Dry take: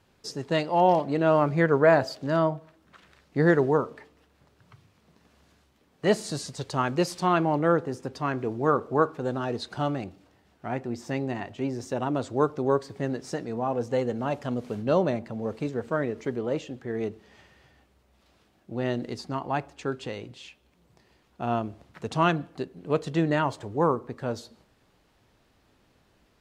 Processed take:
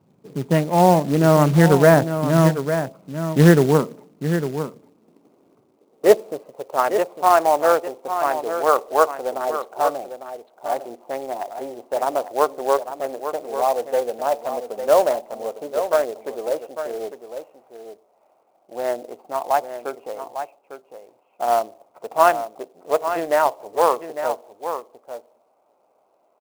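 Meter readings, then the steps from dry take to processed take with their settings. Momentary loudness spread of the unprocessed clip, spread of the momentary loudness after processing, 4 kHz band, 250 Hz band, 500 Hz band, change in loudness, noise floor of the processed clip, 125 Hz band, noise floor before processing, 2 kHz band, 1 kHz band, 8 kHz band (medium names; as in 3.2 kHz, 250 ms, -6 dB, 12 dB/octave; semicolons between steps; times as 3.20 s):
13 LU, 17 LU, +3.5 dB, +5.0 dB, +7.0 dB, +7.0 dB, -62 dBFS, +8.0 dB, -65 dBFS, +4.5 dB, +8.0 dB, +10.0 dB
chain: local Wiener filter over 25 samples; low-pass 2.4 kHz 24 dB/octave; high-pass sweep 160 Hz -> 650 Hz, 3.69–6.99 s; delay 852 ms -9.5 dB; short-mantissa float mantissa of 2-bit; trim +5 dB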